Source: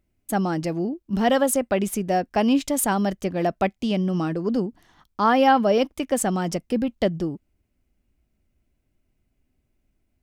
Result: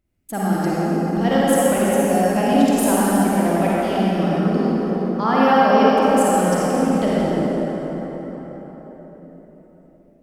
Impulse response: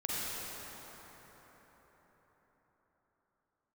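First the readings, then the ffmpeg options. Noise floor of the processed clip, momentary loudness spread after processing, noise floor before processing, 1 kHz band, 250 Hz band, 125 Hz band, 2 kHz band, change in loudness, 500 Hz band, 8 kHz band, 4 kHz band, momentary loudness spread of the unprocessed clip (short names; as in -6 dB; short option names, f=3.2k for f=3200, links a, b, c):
-51 dBFS, 13 LU, -73 dBFS, +5.0 dB, +6.0 dB, +6.0 dB, +4.5 dB, +5.0 dB, +5.5 dB, +3.0 dB, +2.5 dB, 8 LU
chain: -filter_complex "[1:a]atrim=start_sample=2205[a];[0:a][a]afir=irnorm=-1:irlink=0,volume=-1.5dB"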